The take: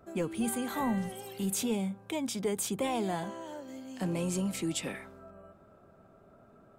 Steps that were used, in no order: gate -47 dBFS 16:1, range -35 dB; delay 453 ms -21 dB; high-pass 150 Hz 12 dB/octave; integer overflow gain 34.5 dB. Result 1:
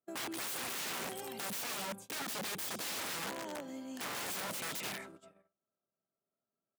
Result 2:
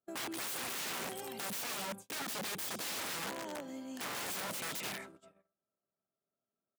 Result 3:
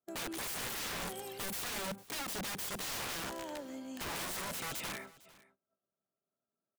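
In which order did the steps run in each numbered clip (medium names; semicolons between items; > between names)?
delay > gate > integer overflow > high-pass; delay > integer overflow > high-pass > gate; high-pass > gate > integer overflow > delay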